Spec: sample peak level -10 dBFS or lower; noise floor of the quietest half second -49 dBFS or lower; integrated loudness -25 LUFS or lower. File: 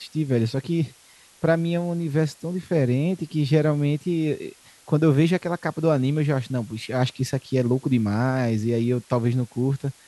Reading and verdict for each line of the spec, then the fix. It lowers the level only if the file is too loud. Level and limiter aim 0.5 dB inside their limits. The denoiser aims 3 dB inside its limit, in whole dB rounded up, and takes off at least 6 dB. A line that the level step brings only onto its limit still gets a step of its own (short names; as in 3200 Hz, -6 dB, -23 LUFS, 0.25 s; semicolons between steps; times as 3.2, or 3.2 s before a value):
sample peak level -7.0 dBFS: fail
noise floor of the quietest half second -53 dBFS: OK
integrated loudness -23.5 LUFS: fail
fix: gain -2 dB; limiter -10.5 dBFS